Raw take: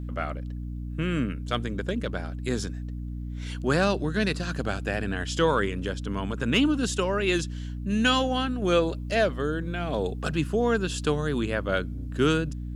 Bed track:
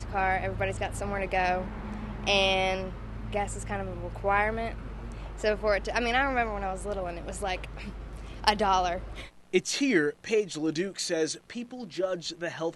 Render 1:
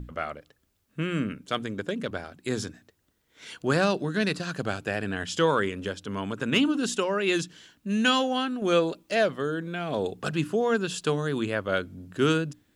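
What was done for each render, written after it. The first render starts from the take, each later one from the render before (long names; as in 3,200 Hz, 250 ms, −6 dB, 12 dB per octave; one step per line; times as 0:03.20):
mains-hum notches 60/120/180/240/300 Hz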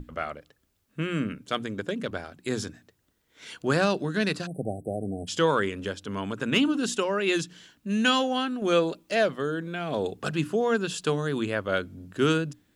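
0:04.46–0:05.28: time-frequency box erased 800–7,900 Hz
mains-hum notches 60/120/180 Hz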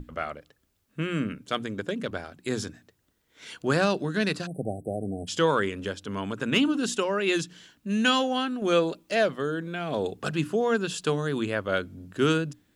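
no processing that can be heard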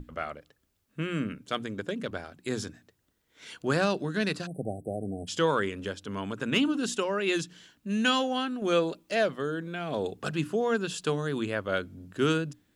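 level −2.5 dB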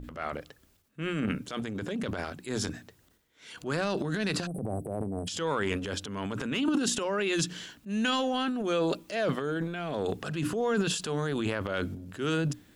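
brickwall limiter −19.5 dBFS, peak gain reduction 6.5 dB
transient designer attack −6 dB, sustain +11 dB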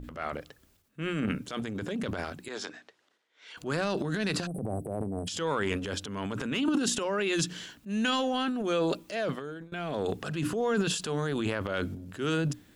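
0:02.48–0:03.57: band-pass filter 500–4,700 Hz
0:09.06–0:09.72: fade out, to −20.5 dB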